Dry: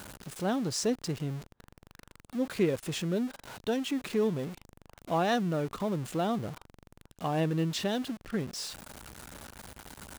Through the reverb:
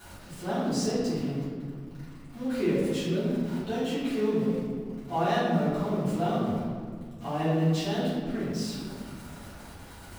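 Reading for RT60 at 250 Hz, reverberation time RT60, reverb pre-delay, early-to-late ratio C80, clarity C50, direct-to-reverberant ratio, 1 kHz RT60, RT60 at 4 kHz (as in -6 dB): 2.6 s, 1.9 s, 3 ms, 1.5 dB, -1.0 dB, -14.0 dB, 1.7 s, 1.0 s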